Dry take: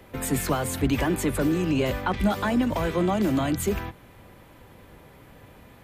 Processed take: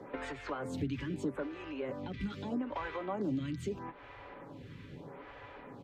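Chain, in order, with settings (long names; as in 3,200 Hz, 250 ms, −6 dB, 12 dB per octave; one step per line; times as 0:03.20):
high-pass filter 90 Hz 6 dB per octave
high-frequency loss of the air 160 metres
notch filter 670 Hz, Q 13
comb filter 7.1 ms, depth 39%
downward compressor 4 to 1, threshold −39 dBFS, peak gain reduction 18 dB
phaser with staggered stages 0.79 Hz
level +5 dB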